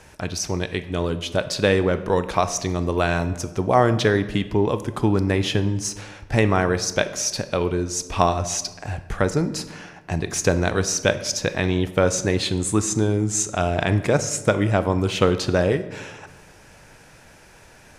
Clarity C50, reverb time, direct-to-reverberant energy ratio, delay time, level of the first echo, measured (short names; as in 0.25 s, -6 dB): 13.5 dB, 1.2 s, 11.0 dB, none, none